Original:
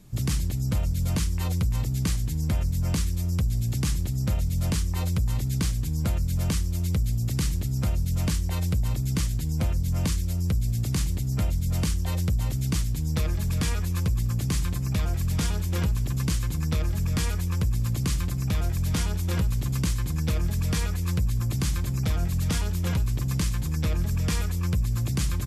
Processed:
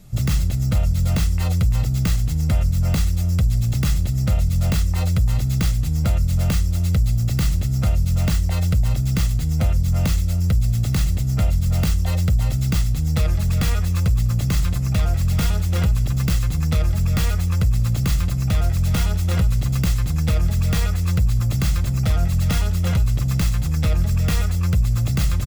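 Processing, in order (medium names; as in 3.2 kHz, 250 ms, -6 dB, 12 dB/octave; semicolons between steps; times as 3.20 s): tracing distortion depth 0.14 ms; comb 1.5 ms, depth 42%; trim +4.5 dB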